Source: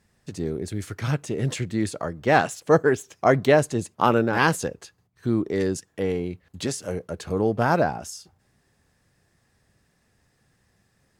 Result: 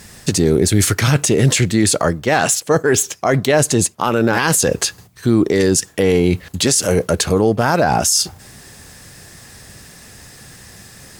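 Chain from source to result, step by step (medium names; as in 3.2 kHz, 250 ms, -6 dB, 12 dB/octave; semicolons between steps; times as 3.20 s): treble shelf 3.2 kHz +10.5 dB; reverse; compression 12:1, threshold -31 dBFS, peak gain reduction 19.5 dB; reverse; loudness maximiser +27 dB; trim -4 dB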